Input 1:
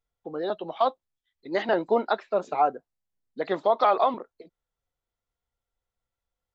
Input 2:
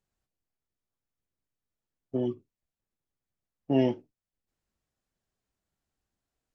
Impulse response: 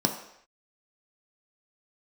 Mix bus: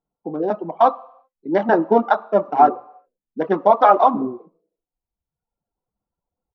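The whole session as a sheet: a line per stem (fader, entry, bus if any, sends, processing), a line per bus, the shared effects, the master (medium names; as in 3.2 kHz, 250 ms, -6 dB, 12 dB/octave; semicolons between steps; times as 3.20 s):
-3.0 dB, 0.00 s, send -4.5 dB, local Wiener filter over 25 samples
+1.0 dB, 0.45 s, no send, spectral contrast enhancement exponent 2.6; steep low-pass 1.7 kHz 96 dB/octave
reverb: on, pre-delay 3 ms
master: low-pass 3.8 kHz 12 dB/octave; reverb removal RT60 1 s; peaking EQ 1.2 kHz +8 dB 0.93 oct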